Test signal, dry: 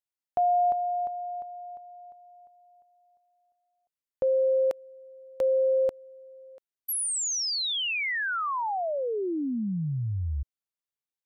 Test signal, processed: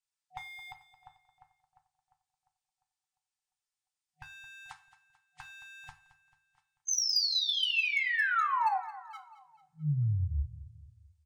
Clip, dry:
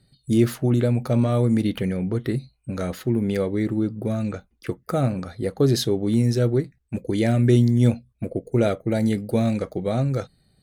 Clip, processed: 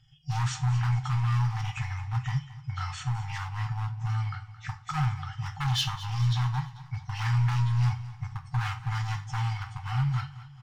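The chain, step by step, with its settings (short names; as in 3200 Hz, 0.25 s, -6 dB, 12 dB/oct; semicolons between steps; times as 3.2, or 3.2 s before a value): nonlinear frequency compression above 1800 Hz 1.5:1; resonator 440 Hz, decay 0.17 s, harmonics all, mix 70%; overloaded stage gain 30.5 dB; on a send: feedback echo 0.22 s, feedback 49%, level -16 dB; on the sum: two-slope reverb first 0.33 s, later 1.8 s, from -27 dB, DRR 6 dB; FFT band-reject 160–740 Hz; gain +8 dB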